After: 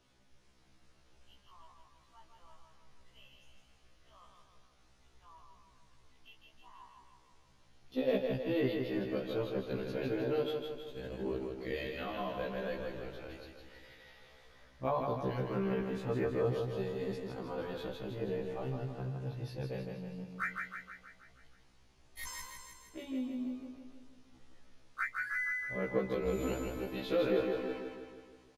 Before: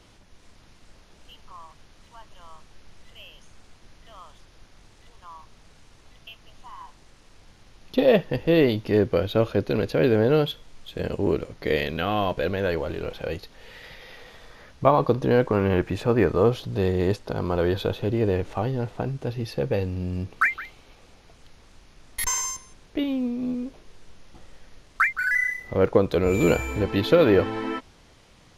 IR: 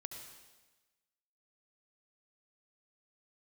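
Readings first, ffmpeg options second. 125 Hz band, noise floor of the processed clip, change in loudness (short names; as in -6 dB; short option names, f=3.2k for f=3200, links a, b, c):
-14.0 dB, -65 dBFS, -13.0 dB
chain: -af "flanger=delay=8.2:depth=9.1:regen=-56:speed=0.12:shape=sinusoidal,aecho=1:1:159|318|477|636|795|954|1113:0.596|0.328|0.18|0.0991|0.0545|0.03|0.0165,afftfilt=real='re*1.73*eq(mod(b,3),0)':imag='im*1.73*eq(mod(b,3),0)':win_size=2048:overlap=0.75,volume=-8.5dB"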